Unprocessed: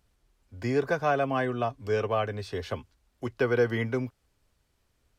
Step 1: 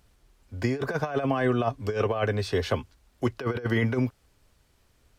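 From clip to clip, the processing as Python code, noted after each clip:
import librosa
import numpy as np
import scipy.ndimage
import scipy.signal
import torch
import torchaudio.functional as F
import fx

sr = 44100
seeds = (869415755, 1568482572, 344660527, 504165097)

y = fx.over_compress(x, sr, threshold_db=-29.0, ratio=-0.5)
y = F.gain(torch.from_numpy(y), 4.5).numpy()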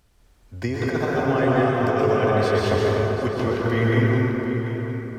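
y = x + 10.0 ** (-11.5 / 20.0) * np.pad(x, (int(740 * sr / 1000.0), 0))[:len(x)]
y = fx.rev_plate(y, sr, seeds[0], rt60_s=3.6, hf_ratio=0.45, predelay_ms=110, drr_db=-5.0)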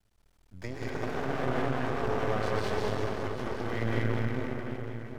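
y = x + 10.0 ** (-3.0 / 20.0) * np.pad(x, (int(206 * sr / 1000.0), 0))[:len(x)]
y = np.maximum(y, 0.0)
y = F.gain(torch.from_numpy(y), -8.0).numpy()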